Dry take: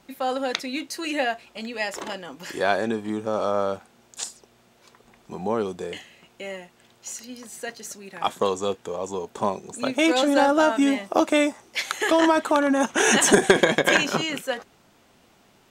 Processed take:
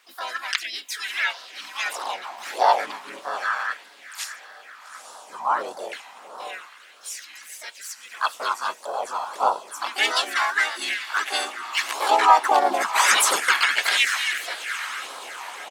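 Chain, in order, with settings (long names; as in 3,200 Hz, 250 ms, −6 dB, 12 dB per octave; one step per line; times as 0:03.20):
on a send: feedback delay with all-pass diffusion 868 ms, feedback 47%, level −12 dB
on the sum: all-pass phaser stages 12, 1.6 Hz, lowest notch 440–2,200 Hz
pitch-shifted copies added −4 semitones −4 dB, +4 semitones −3 dB, +5 semitones −4 dB
auto-filter high-pass sine 0.3 Hz 830–1,800 Hz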